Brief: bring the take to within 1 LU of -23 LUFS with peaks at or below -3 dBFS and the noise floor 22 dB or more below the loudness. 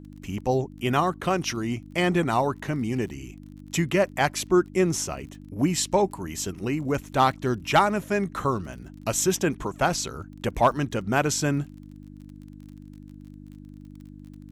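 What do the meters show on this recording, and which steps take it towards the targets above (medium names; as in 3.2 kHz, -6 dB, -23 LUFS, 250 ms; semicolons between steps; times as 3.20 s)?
tick rate 33 per s; hum 50 Hz; highest harmonic 300 Hz; hum level -41 dBFS; loudness -25.5 LUFS; peak level -9.0 dBFS; loudness target -23.0 LUFS
-> de-click; de-hum 50 Hz, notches 6; trim +2.5 dB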